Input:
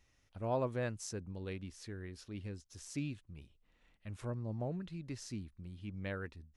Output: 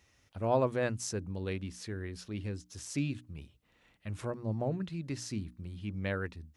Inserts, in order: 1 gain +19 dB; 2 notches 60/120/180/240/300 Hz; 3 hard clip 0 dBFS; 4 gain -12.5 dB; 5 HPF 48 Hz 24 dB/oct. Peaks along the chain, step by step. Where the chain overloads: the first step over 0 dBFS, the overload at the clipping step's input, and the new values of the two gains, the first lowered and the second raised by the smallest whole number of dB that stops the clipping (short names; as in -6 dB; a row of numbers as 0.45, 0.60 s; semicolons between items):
-4.0, -3.0, -3.0, -15.5, -15.5 dBFS; no overload